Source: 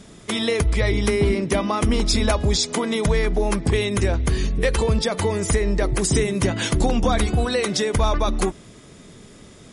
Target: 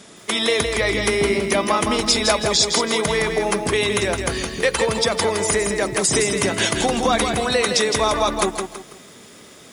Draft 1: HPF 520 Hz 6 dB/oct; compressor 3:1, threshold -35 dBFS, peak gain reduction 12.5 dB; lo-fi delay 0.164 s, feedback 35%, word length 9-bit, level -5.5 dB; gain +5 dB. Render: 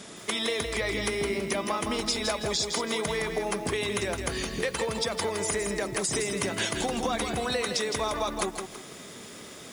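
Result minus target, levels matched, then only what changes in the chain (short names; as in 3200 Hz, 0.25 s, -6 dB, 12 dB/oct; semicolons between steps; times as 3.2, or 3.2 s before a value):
compressor: peak gain reduction +12.5 dB
remove: compressor 3:1, threshold -35 dBFS, peak gain reduction 12.5 dB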